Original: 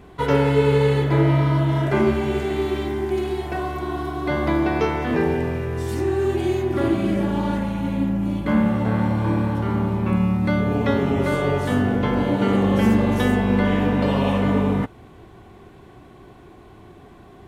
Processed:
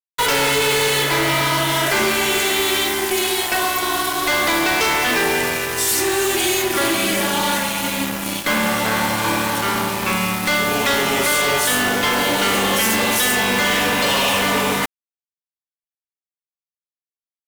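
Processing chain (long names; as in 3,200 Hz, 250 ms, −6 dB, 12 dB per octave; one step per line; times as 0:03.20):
first difference
fuzz pedal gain 47 dB, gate −53 dBFS
bit reduction 5 bits
level −2 dB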